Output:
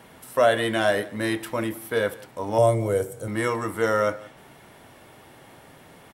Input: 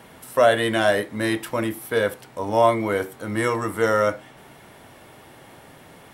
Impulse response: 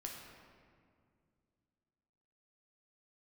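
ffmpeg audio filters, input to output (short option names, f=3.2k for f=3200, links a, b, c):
-filter_complex "[0:a]asettb=1/sr,asplit=3[a][b][c];[a]atrim=end=2.584[d];[b]atrim=start=2.58:end=3.28,asetpts=PTS-STARTPTS,afade=t=in:d=0.004:c=qsin,afade=t=out:st=0.696:d=0.004:c=qsin,equalizer=f=125:t=o:w=1:g=12,equalizer=f=250:t=o:w=1:g=-8,equalizer=f=500:t=o:w=1:g=7,equalizer=f=1k:t=o:w=1:g=-8,equalizer=f=2k:t=o:w=1:g=-7,equalizer=f=4k:t=o:w=1:g=-6,equalizer=f=8k:t=o:w=1:g=10[e];[c]atrim=start=3.276[f];[d][e]acrossfade=d=0.004:c1=hsin:c2=qsin[g];[g][f]acrossfade=d=0.004:c1=qsin:c2=hsin,aecho=1:1:173:0.0841,volume=-2.5dB"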